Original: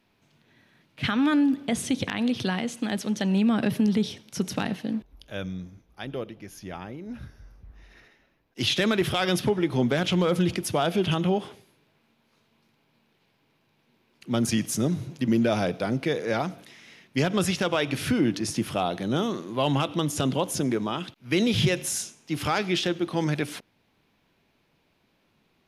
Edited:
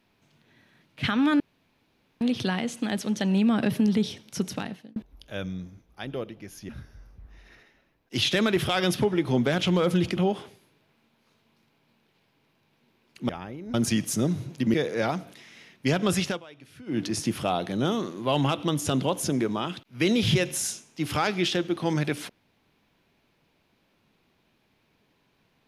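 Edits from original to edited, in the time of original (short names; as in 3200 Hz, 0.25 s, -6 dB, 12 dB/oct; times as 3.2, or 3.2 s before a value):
1.4–2.21 room tone
4.37–4.96 fade out linear
6.69–7.14 move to 14.35
10.62–11.23 cut
15.35–16.05 cut
17.57–18.33 dip -22 dB, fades 0.16 s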